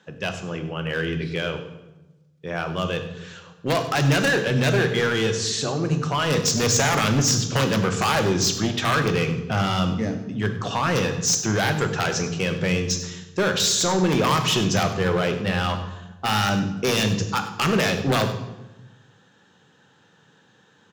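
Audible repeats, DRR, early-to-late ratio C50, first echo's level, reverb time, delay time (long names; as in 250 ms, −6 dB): 1, 7.0 dB, 9.0 dB, −16.0 dB, 1.0 s, 98 ms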